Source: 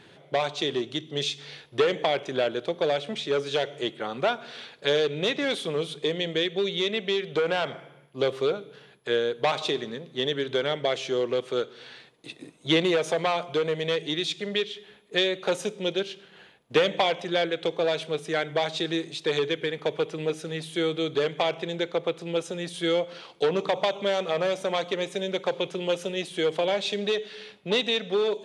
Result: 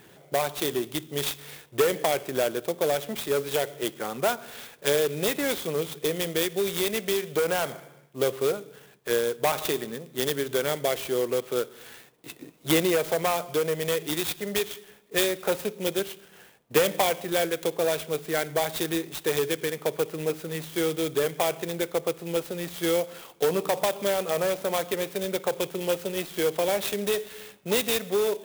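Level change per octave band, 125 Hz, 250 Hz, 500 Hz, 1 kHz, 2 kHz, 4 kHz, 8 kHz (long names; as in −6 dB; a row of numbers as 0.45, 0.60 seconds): 0.0, 0.0, 0.0, 0.0, −1.0, −3.5, +10.5 decibels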